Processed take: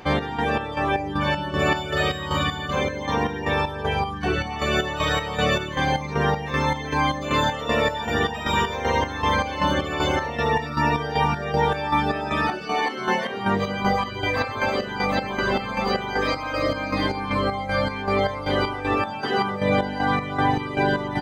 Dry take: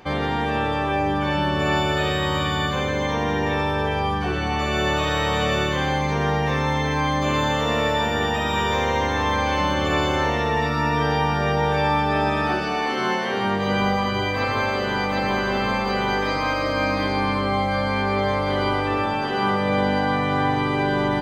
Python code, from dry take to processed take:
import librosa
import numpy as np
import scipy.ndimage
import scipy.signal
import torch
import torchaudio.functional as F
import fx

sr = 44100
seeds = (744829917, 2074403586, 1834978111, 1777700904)

y = fx.dereverb_blind(x, sr, rt60_s=1.2)
y = fx.chopper(y, sr, hz=2.6, depth_pct=60, duty_pct=50)
y = F.gain(torch.from_numpy(y), 4.0).numpy()